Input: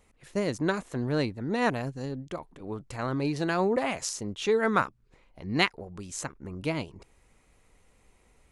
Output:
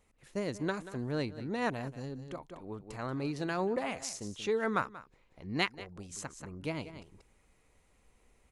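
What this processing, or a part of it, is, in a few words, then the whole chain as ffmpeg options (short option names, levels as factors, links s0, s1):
ducked delay: -filter_complex "[0:a]asplit=3[s0][s1][s2];[s1]adelay=184,volume=0.75[s3];[s2]apad=whole_len=383838[s4];[s3][s4]sidechaincompress=threshold=0.00891:ratio=16:attack=49:release=371[s5];[s0][s5]amix=inputs=2:normalize=0,volume=0.473"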